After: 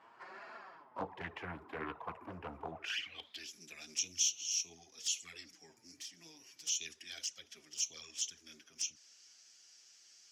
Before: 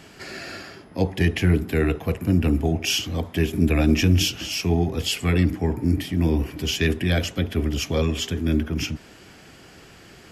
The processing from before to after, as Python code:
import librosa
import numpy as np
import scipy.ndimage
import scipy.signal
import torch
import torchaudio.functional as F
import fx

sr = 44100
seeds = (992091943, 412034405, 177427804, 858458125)

y = fx.filter_sweep_bandpass(x, sr, from_hz=1000.0, to_hz=5900.0, start_s=2.7, end_s=3.51, q=5.5)
y = fx.env_flanger(y, sr, rest_ms=10.8, full_db=-35.5)
y = fx.doppler_dist(y, sr, depth_ms=0.46)
y = y * 10.0 ** (4.0 / 20.0)